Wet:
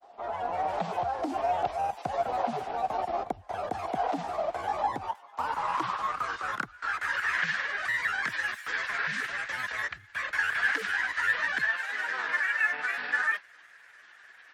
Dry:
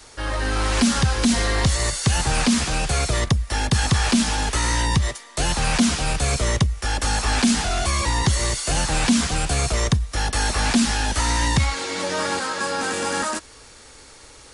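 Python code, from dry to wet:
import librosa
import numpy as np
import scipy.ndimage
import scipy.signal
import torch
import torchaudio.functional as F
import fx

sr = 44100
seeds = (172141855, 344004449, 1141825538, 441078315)

y = fx.granulator(x, sr, seeds[0], grain_ms=100.0, per_s=20.0, spray_ms=12.0, spread_st=12)
y = fx.filter_sweep_bandpass(y, sr, from_hz=730.0, to_hz=1700.0, start_s=4.6, end_s=7.28, q=6.9)
y = F.gain(torch.from_numpy(y), 8.0).numpy()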